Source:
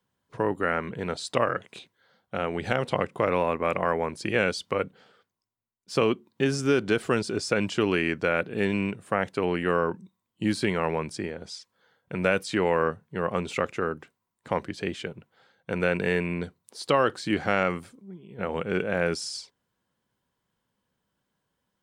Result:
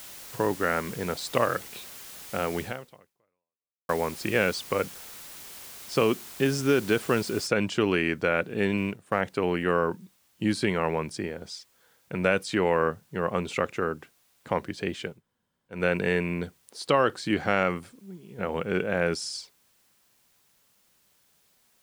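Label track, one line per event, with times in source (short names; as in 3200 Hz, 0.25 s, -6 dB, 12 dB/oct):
2.610000	3.890000	fade out exponential
7.470000	7.470000	noise floor step -44 dB -66 dB
8.770000	9.210000	G.711 law mismatch coded by A
15.140000	15.770000	room tone, crossfade 0.16 s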